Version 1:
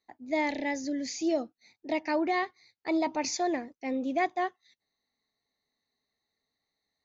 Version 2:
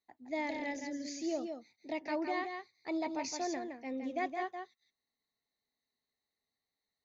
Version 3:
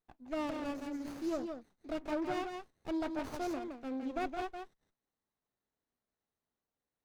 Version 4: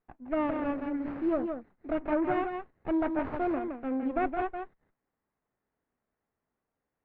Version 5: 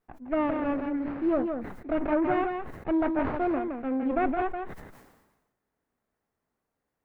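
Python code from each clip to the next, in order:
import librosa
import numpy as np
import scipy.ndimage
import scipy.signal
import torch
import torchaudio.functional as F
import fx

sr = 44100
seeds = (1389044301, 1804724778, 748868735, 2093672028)

y1 = x + 10.0 ** (-6.0 / 20.0) * np.pad(x, (int(166 * sr / 1000.0), 0))[:len(x)]
y1 = y1 * 10.0 ** (-8.0 / 20.0)
y2 = fx.running_max(y1, sr, window=17)
y3 = scipy.signal.sosfilt(scipy.signal.butter(4, 2200.0, 'lowpass', fs=sr, output='sos'), y2)
y3 = y3 * 10.0 ** (7.5 / 20.0)
y4 = fx.sustainer(y3, sr, db_per_s=52.0)
y4 = y4 * 10.0 ** (2.5 / 20.0)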